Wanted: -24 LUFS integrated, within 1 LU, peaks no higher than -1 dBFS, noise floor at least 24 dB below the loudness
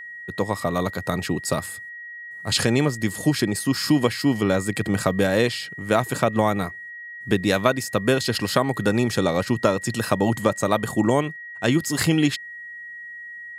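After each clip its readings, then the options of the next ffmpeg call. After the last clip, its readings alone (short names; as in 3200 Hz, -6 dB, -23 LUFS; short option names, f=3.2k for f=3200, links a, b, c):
steady tone 1900 Hz; tone level -35 dBFS; loudness -22.5 LUFS; peak -3.0 dBFS; loudness target -24.0 LUFS
-> -af "bandreject=f=1.9k:w=30"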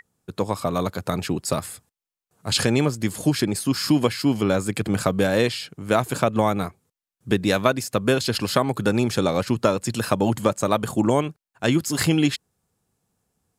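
steady tone none; loudness -22.5 LUFS; peak -3.0 dBFS; loudness target -24.0 LUFS
-> -af "volume=-1.5dB"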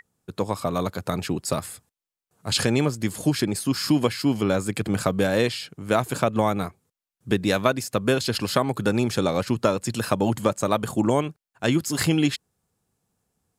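loudness -24.0 LUFS; peak -4.5 dBFS; noise floor -91 dBFS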